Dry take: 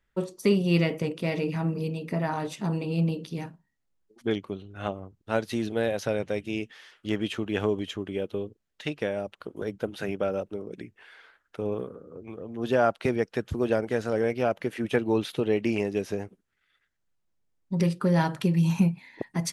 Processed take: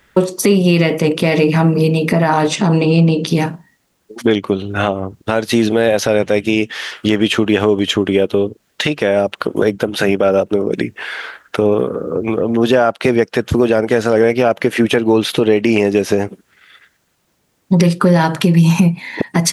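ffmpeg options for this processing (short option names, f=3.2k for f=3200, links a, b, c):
-filter_complex "[0:a]asettb=1/sr,asplit=3[a][b][c];[a]atrim=end=2.484[d];[b]atrim=start=2.48:end=3.27,asetpts=PTS-STARTPTS,afade=t=in:d=0.004:c=qsin,afade=t=out:st=0.786:d=0.004:c=qsin,lowpass=f=8.3k:w=0.5412,lowpass=f=8.3k:w=1.3066[e];[c]atrim=start=3.266[f];[d][e]acrossfade=d=0.004:c1=hsin:c2=qsin[g];[g][f]acrossfade=d=0.004:c1=qsin:c2=hsin,highpass=f=150:p=1,acompressor=threshold=-39dB:ratio=2.5,alimiter=level_in=27dB:limit=-1dB:release=50:level=0:latency=1,volume=-1dB"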